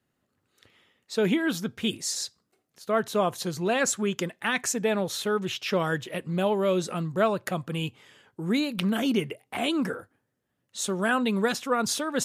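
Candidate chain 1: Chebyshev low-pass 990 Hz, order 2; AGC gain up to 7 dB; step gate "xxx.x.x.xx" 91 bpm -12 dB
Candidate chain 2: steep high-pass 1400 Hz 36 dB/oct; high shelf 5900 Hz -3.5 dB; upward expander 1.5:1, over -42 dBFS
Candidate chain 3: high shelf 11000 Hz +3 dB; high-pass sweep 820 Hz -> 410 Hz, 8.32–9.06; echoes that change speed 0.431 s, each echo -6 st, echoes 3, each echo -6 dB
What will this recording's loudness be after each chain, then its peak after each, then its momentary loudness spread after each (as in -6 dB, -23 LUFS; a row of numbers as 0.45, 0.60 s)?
-23.5, -36.5, -26.5 LUFS; -6.5, -14.0, -7.5 dBFS; 13, 15, 11 LU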